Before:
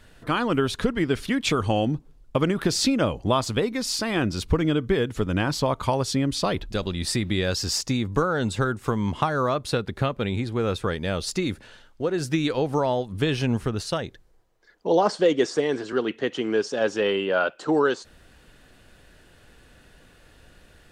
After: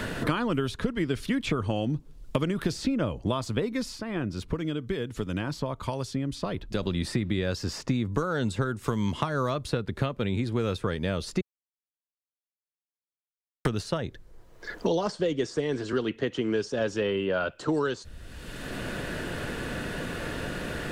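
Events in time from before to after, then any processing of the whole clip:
3.79–6.96 dip -14.5 dB, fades 0.25 s
11.41–13.65 mute
whole clip: low shelf 320 Hz +4.5 dB; notch 780 Hz, Q 12; three-band squash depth 100%; gain -6 dB

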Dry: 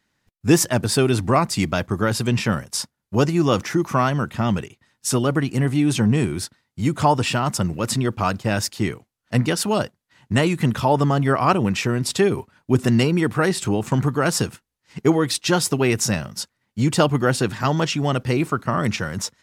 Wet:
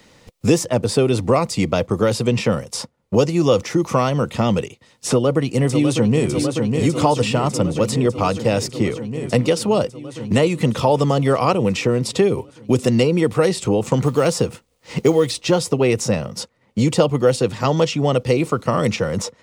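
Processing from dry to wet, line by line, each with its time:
5.09–6.29 echo throw 0.6 s, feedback 75%, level -8 dB
14.05–15.57 G.711 law mismatch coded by mu
whole clip: thirty-one-band EQ 500 Hz +12 dB, 1600 Hz -10 dB, 12500 Hz -10 dB; three-band squash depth 70%

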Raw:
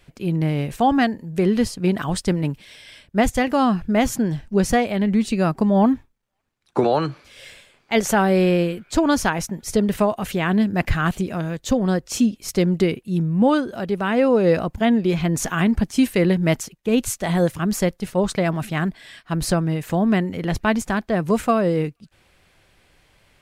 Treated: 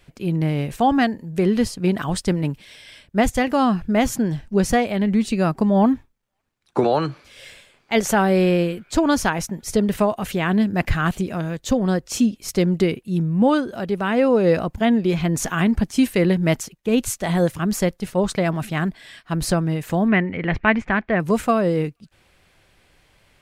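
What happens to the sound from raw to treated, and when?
20.08–21.2 synth low-pass 2200 Hz, resonance Q 2.8

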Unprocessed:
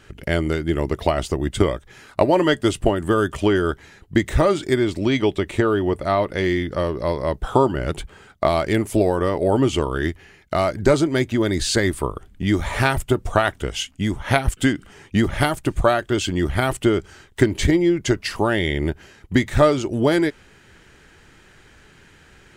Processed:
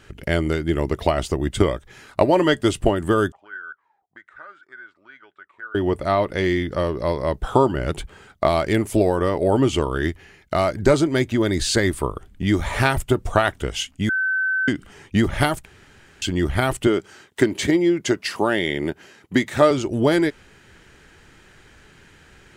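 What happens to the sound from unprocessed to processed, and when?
3.32–5.75 auto-wah 680–1500 Hz, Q 18, up, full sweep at -16.5 dBFS
14.09–14.68 bleep 1530 Hz -18.5 dBFS
15.65–16.22 room tone
16.87–19.71 HPF 180 Hz

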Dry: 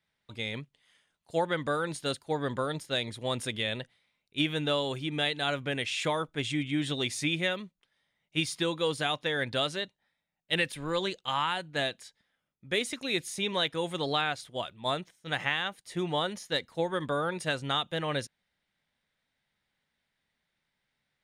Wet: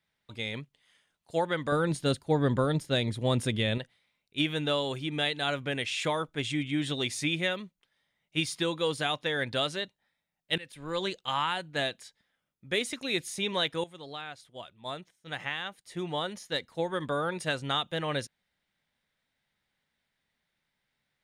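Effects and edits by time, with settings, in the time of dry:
1.72–3.78 low shelf 380 Hz +11 dB
10.58–11.07 fade in, from -23.5 dB
13.84–17.29 fade in, from -15 dB

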